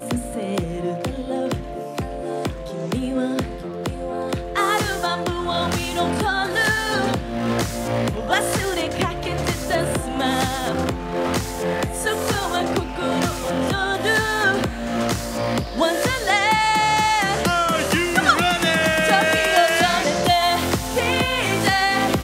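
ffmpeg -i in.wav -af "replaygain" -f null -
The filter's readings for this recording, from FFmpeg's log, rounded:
track_gain = +1.8 dB
track_peak = 0.500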